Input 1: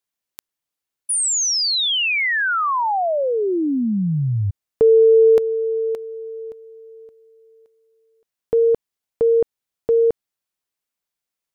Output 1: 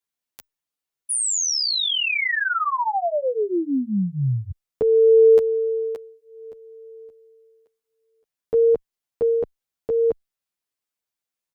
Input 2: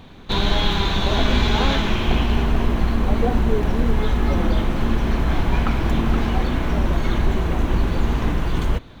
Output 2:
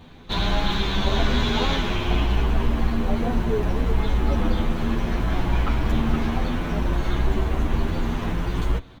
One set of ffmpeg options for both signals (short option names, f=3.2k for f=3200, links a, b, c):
-filter_complex "[0:a]asplit=2[a][b];[b]adelay=9.6,afreqshift=0.62[c];[a][c]amix=inputs=2:normalize=1"